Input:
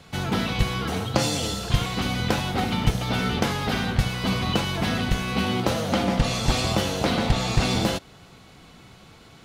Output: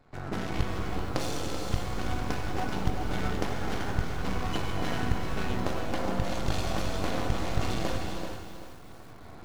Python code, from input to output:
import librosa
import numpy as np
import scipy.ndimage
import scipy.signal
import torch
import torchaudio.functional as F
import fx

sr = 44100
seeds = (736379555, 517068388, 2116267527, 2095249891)

y = fx.wiener(x, sr, points=15)
y = fx.recorder_agc(y, sr, target_db=-9.5, rise_db_per_s=7.1, max_gain_db=30)
y = y + 0.34 * np.pad(y, (int(2.8 * sr / 1000.0), 0))[:len(y)]
y = np.maximum(y, 0.0)
y = fx.rev_gated(y, sr, seeds[0], gate_ms=500, shape='flat', drr_db=2.5)
y = fx.echo_crushed(y, sr, ms=384, feedback_pct=35, bits=7, wet_db=-9.0)
y = y * 10.0 ** (-6.5 / 20.0)